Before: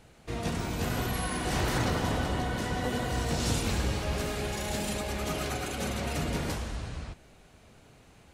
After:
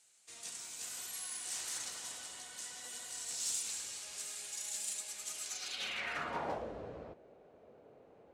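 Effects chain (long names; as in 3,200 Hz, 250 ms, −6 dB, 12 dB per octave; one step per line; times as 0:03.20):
stylus tracing distortion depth 0.032 ms
band-pass filter sweep 7,900 Hz → 500 Hz, 0:05.45–0:06.67
level +5 dB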